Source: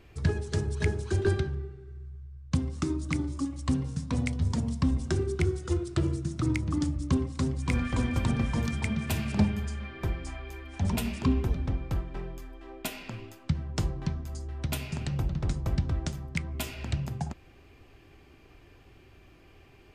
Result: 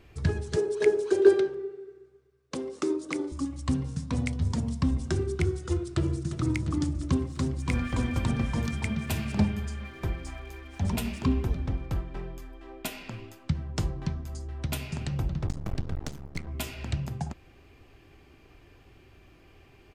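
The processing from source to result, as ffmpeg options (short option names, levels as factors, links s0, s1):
-filter_complex "[0:a]asettb=1/sr,asplit=3[s0][s1][s2];[s0]atrim=end=0.564[s3];[s1]atrim=start=0.56:end=3.32,asetpts=PTS-STARTPTS,afade=t=in:d=0.004:c=qsin,afade=t=out:st=2.756:d=0.004:c=qsin,highpass=f=420:t=q:w=4.6[s4];[s2]atrim=start=3.316[s5];[s3][s4]acrossfade=d=0.004:c1=hsin:c2=qsin[s6];[s6][s5]acrossfade=d=0.004:c1=qsin:c2=hsin,asplit=2[s7][s8];[s8]afade=t=in:st=5.74:d=0.01,afade=t=out:st=6.41:d=0.01,aecho=0:1:350|700|1050|1400|1750|2100|2450|2800|3150|3500:0.281838|0.197287|0.138101|0.0966705|0.0676694|0.0473686|0.033158|0.0232106|0.0162474|0.0113732[s9];[s7][s9]amix=inputs=2:normalize=0,asettb=1/sr,asplit=3[s10][s11][s12];[s10]atrim=end=7.194[s13];[s11]atrim=start=7.19:end=11.86,asetpts=PTS-STARTPTS,afade=t=in:d=0.004:c=qsin,afade=t=out:st=4.666:d=0.004:c=qsin,aeval=exprs='sgn(val(0))*max(abs(val(0))-0.0015,0)':c=same[s14];[s12]atrim=start=11.856[s15];[s13][s14]acrossfade=d=0.004:c1=hsin:c2=qsin[s16];[s16][s15]acrossfade=d=0.004:c1=qsin:c2=hsin,asettb=1/sr,asplit=3[s17][s18][s19];[s17]atrim=end=15.474[s20];[s18]atrim=start=15.47:end=16.47,asetpts=PTS-STARTPTS,afade=t=in:d=0.004:c=qsin,afade=t=out:st=0.996:d=0.004:c=qsin,aeval=exprs='max(val(0),0)':c=same[s21];[s19]atrim=start=16.466[s22];[s20][s21]acrossfade=d=0.004:c1=hsin:c2=qsin[s23];[s23][s22]acrossfade=d=0.004:c1=qsin:c2=hsin"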